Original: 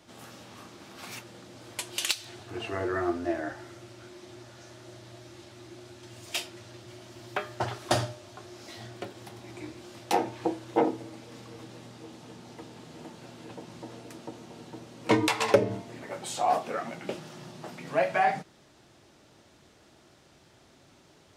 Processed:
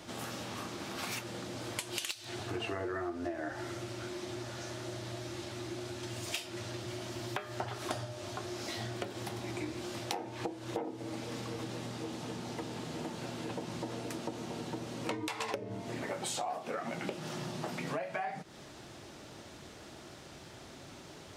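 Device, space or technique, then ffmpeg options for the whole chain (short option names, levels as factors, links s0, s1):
serial compression, peaks first: -af "acompressor=threshold=0.0158:ratio=8,acompressor=threshold=0.00501:ratio=2,volume=2.51"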